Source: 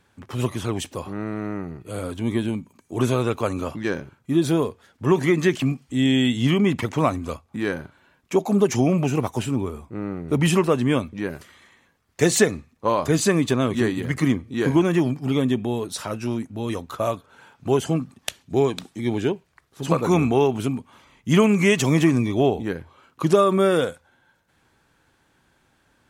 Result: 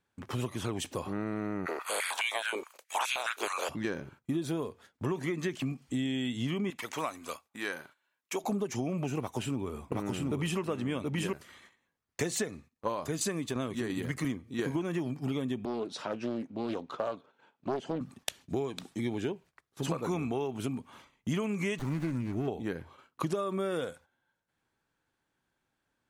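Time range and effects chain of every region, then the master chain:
1.65–3.68 spectral limiter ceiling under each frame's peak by 28 dB + stepped high-pass 9.5 Hz 390–2500 Hz
6.7–8.44 HPF 1300 Hz 6 dB/oct + high shelf 11000 Hz +7.5 dB
9.19–11.33 bell 2900 Hz +2.5 dB + echo 0.727 s -3 dB
12.52–14.75 high shelf 5500 Hz +4.5 dB + tremolo saw down 2.9 Hz, depth 55%
15.65–18.01 BPF 220–3500 Hz + bell 1600 Hz -6 dB 1.7 oct + Doppler distortion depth 0.52 ms
21.79–22.48 fixed phaser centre 1500 Hz, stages 4 + running maximum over 17 samples
whole clip: bell 65 Hz -4 dB 1.6 oct; compressor 8:1, threshold -28 dBFS; gate -52 dBFS, range -16 dB; gain -1.5 dB

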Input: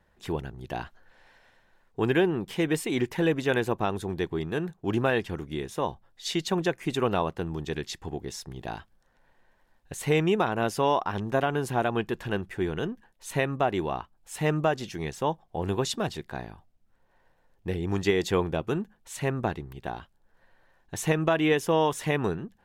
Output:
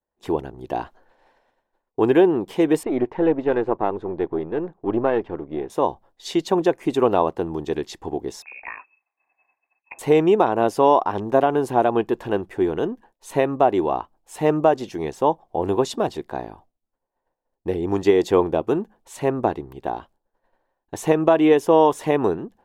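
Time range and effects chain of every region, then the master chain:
2.83–5.7 half-wave gain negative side -7 dB + LPF 2100 Hz
8.42–9.99 inverted band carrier 2600 Hz + low shelf 160 Hz -9 dB
whole clip: expander -51 dBFS; band shelf 520 Hz +10 dB 2.4 oct; gain -1 dB

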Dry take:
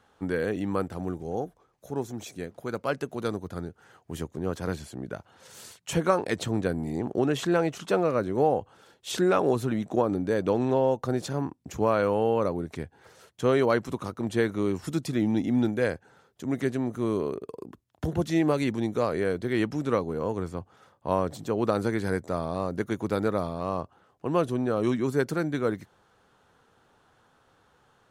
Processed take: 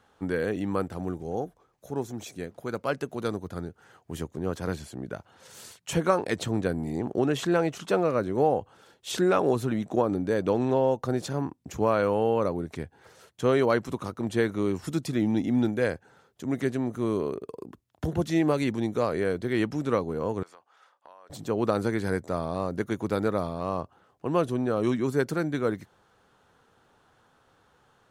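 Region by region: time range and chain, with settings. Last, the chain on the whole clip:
20.43–21.3 HPF 880 Hz + high shelf 7700 Hz -10 dB + compressor 12:1, threshold -46 dBFS
whole clip: dry

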